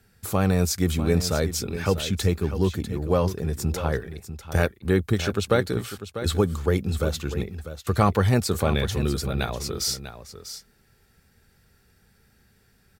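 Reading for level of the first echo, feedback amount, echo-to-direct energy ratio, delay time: -11.5 dB, no steady repeat, -11.5 dB, 0.646 s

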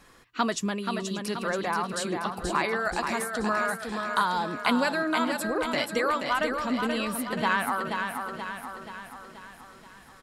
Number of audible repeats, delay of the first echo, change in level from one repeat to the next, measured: 9, 0.48 s, no steady repeat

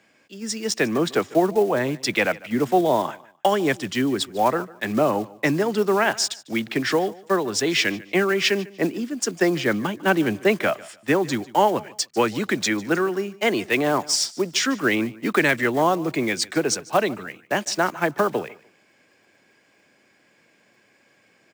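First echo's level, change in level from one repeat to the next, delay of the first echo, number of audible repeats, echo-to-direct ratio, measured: -21.0 dB, -12.5 dB, 0.149 s, 2, -21.0 dB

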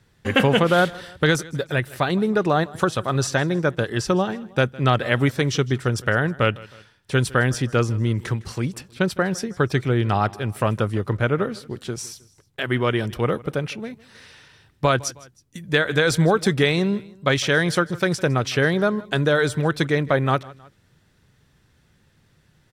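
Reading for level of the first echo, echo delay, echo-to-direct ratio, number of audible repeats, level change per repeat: -21.5 dB, 0.158 s, -20.5 dB, 2, -6.5 dB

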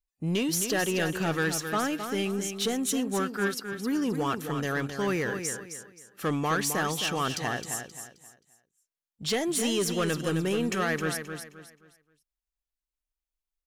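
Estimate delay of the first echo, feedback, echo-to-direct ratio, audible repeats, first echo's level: 0.264 s, 31%, -7.5 dB, 3, -8.0 dB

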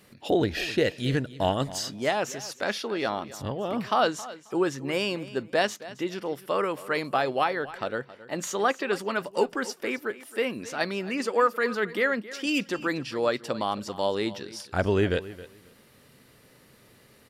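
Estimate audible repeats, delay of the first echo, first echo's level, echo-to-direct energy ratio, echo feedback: 2, 0.269 s, -17.0 dB, -17.0 dB, 18%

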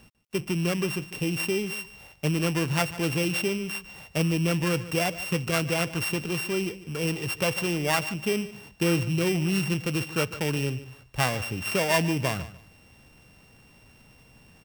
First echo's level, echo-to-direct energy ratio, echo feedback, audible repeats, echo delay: -16.0 dB, -16.0 dB, 21%, 2, 0.148 s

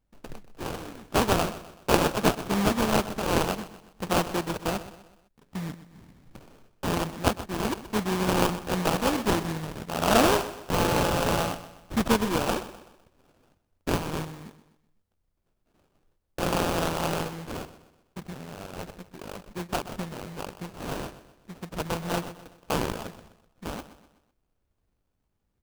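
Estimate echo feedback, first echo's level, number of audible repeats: 44%, -14.5 dB, 3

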